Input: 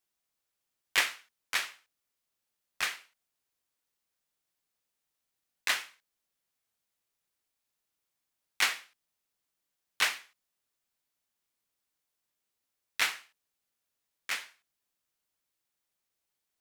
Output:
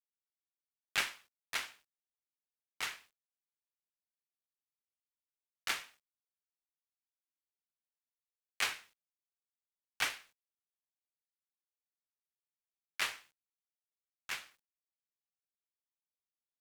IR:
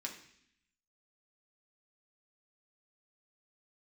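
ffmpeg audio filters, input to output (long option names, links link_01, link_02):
-af "aeval=exprs='val(0)*sin(2*PI*330*n/s)':channel_layout=same,acrusher=bits=10:mix=0:aa=0.000001,volume=-3.5dB"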